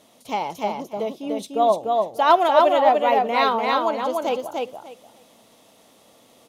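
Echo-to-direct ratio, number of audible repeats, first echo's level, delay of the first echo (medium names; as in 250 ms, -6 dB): -3.0 dB, 3, -3.0 dB, 296 ms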